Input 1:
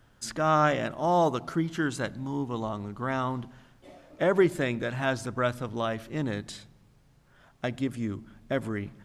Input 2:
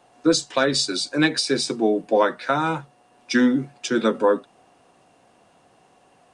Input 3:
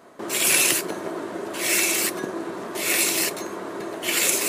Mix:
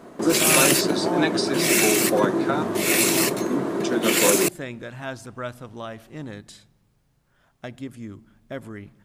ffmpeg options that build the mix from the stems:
ffmpeg -i stem1.wav -i stem2.wav -i stem3.wav -filter_complex "[0:a]highshelf=frequency=11000:gain=9.5,volume=-5dB[link_01];[1:a]volume=-4.5dB,asplit=3[link_02][link_03][link_04];[link_02]atrim=end=2.63,asetpts=PTS-STARTPTS,afade=type=out:start_time=2.626:duration=0.004:curve=hsin[link_05];[link_03]atrim=start=2.63:end=3.5,asetpts=PTS-STARTPTS,volume=0[link_06];[link_04]atrim=start=3.5,asetpts=PTS-STARTPTS,afade=type=in:duration=0.004:curve=hsin[link_07];[link_05][link_06][link_07]concat=n=3:v=0:a=1[link_08];[2:a]equalizer=frequency=180:width=0.5:gain=11,volume=0.5dB[link_09];[link_01][link_08][link_09]amix=inputs=3:normalize=0" out.wav

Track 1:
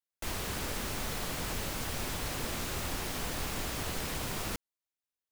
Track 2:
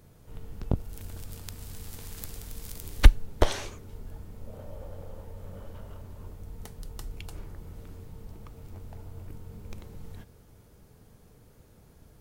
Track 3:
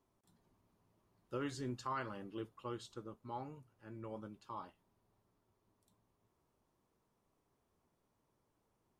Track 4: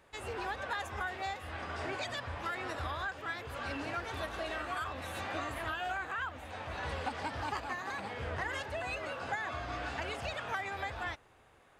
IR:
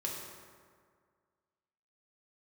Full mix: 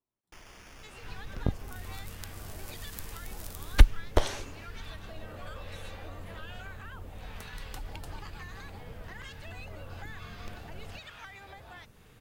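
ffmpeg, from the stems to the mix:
-filter_complex "[0:a]acrusher=samples=11:mix=1:aa=0.000001,asubboost=boost=8.5:cutoff=65,adelay=100,volume=-15.5dB[link_01];[1:a]adelay=750,volume=-2dB[link_02];[2:a]volume=-15dB[link_03];[3:a]acrossover=split=890[link_04][link_05];[link_04]aeval=exprs='val(0)*(1-0.7/2+0.7/2*cos(2*PI*1.1*n/s))':channel_layout=same[link_06];[link_05]aeval=exprs='val(0)*(1-0.7/2-0.7/2*cos(2*PI*1.1*n/s))':channel_layout=same[link_07];[link_06][link_07]amix=inputs=2:normalize=0,adelay=700,volume=-1dB[link_08];[link_01][link_08]amix=inputs=2:normalize=0,equalizer=frequency=4300:width=0.5:gain=9,acompressor=threshold=-48dB:ratio=3,volume=0dB[link_09];[link_02][link_03][link_09]amix=inputs=3:normalize=0"

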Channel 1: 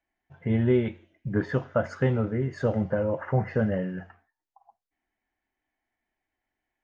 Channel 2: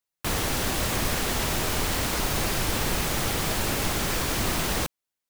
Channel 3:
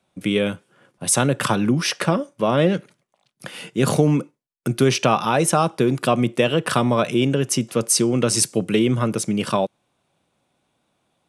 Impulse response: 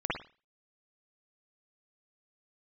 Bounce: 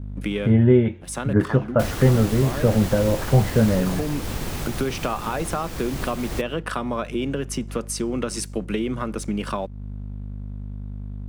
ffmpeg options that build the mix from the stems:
-filter_complex "[0:a]volume=2dB,asplit=2[link_01][link_02];[1:a]adelay=1550,volume=-3.5dB[link_03];[2:a]highpass=frequency=150:width=0.5412,highpass=frequency=150:width=1.3066,equalizer=frequency=1400:width=0.7:gain=7.5,aeval=exprs='val(0)+0.0316*(sin(2*PI*50*n/s)+sin(2*PI*2*50*n/s)/2+sin(2*PI*3*50*n/s)/3+sin(2*PI*4*50*n/s)/4+sin(2*PI*5*50*n/s)/5)':channel_layout=same,volume=-5.5dB[link_04];[link_02]apad=whole_len=497533[link_05];[link_04][link_05]sidechaincompress=threshold=-29dB:ratio=6:attack=5.6:release=650[link_06];[link_03][link_06]amix=inputs=2:normalize=0,aeval=exprs='sgn(val(0))*max(abs(val(0))-0.00422,0)':channel_layout=same,acompressor=threshold=-29dB:ratio=2.5,volume=0dB[link_07];[link_01][link_07]amix=inputs=2:normalize=0,lowshelf=frequency=480:gain=7"

